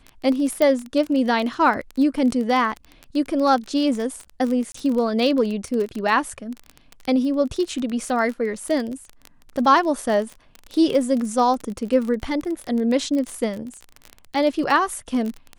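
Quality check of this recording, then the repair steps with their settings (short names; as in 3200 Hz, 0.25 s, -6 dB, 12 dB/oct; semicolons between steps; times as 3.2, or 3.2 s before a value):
crackle 25/s -25 dBFS
0.62 pop -9 dBFS
4.72–4.74 gap 24 ms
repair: de-click; interpolate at 4.72, 24 ms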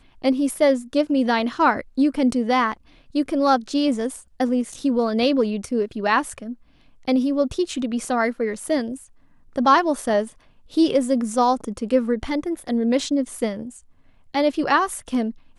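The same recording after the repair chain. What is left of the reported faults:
none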